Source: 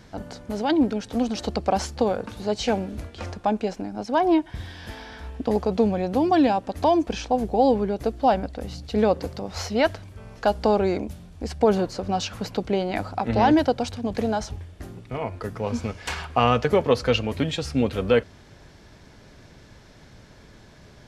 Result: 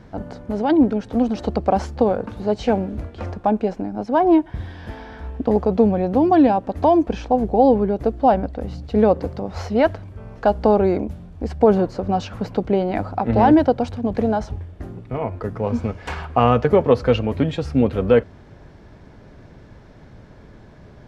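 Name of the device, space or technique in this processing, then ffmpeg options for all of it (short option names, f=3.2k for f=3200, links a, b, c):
through cloth: -af "highshelf=f=2.5k:g=-17,volume=5.5dB"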